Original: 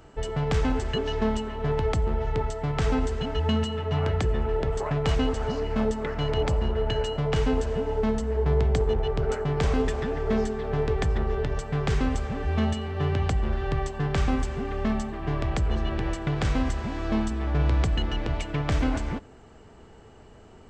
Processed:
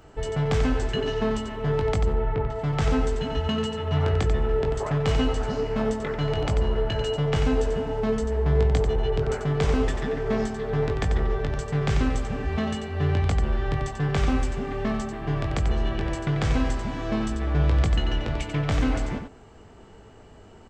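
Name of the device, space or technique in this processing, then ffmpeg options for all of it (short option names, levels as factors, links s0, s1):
slapback doubling: -filter_complex "[0:a]asplit=3[s0][s1][s2];[s0]afade=t=out:st=2.12:d=0.02[s3];[s1]lowpass=2400,afade=t=in:st=2.12:d=0.02,afade=t=out:st=2.54:d=0.02[s4];[s2]afade=t=in:st=2.54:d=0.02[s5];[s3][s4][s5]amix=inputs=3:normalize=0,asplit=3[s6][s7][s8];[s7]adelay=20,volume=0.447[s9];[s8]adelay=91,volume=0.447[s10];[s6][s9][s10]amix=inputs=3:normalize=0"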